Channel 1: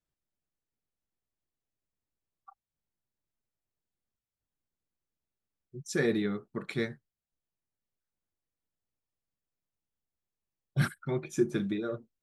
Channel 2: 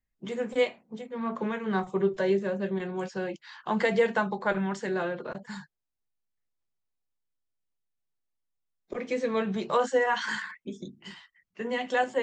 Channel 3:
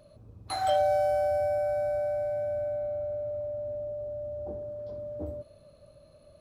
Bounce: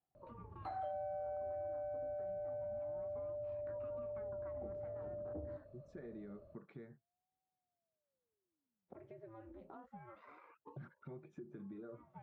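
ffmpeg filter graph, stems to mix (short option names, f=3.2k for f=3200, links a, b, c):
-filter_complex "[0:a]alimiter=level_in=3dB:limit=-24dB:level=0:latency=1:release=152,volume=-3dB,volume=-2.5dB,asplit=2[a][b];[1:a]acompressor=threshold=-37dB:ratio=2,aeval=exprs='val(0)*sin(2*PI*430*n/s+430*0.75/0.27*sin(2*PI*0.27*n/s))':c=same,volume=-9.5dB[c];[2:a]adelay=150,volume=-5.5dB[d];[b]apad=whole_len=539315[e];[c][e]sidechaincompress=threshold=-49dB:ratio=8:attack=16:release=148[f];[a][f]amix=inputs=2:normalize=0,highpass=88,acompressor=threshold=-53dB:ratio=2.5,volume=0dB[g];[d][g]amix=inputs=2:normalize=0,lowpass=1.2k,acompressor=threshold=-42dB:ratio=4"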